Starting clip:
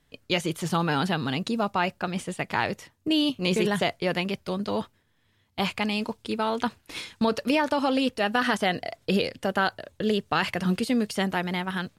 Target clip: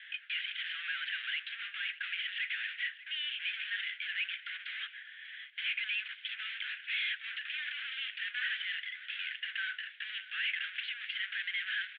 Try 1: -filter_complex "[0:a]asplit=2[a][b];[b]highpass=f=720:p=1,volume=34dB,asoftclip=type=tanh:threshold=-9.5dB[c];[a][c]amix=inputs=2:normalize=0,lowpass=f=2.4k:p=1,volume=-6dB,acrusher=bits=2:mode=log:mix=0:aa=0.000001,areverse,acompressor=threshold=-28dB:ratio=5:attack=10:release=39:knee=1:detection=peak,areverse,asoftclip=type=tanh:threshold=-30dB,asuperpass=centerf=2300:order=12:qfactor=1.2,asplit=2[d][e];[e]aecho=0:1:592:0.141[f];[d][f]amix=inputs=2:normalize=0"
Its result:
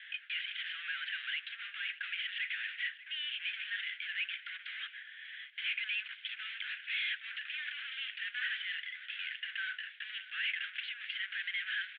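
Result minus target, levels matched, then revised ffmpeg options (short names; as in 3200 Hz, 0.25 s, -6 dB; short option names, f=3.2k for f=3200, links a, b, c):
compressor: peak gain reduction +8.5 dB
-filter_complex "[0:a]asplit=2[a][b];[b]highpass=f=720:p=1,volume=34dB,asoftclip=type=tanh:threshold=-9.5dB[c];[a][c]amix=inputs=2:normalize=0,lowpass=f=2.4k:p=1,volume=-6dB,acrusher=bits=2:mode=log:mix=0:aa=0.000001,areverse,acompressor=threshold=-17.5dB:ratio=5:attack=10:release=39:knee=1:detection=peak,areverse,asoftclip=type=tanh:threshold=-30dB,asuperpass=centerf=2300:order=12:qfactor=1.2,asplit=2[d][e];[e]aecho=0:1:592:0.141[f];[d][f]amix=inputs=2:normalize=0"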